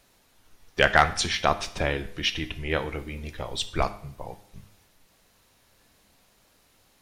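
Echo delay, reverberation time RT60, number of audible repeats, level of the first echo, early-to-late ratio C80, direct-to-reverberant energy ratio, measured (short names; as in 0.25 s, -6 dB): none, 0.60 s, none, none, 18.0 dB, 10.5 dB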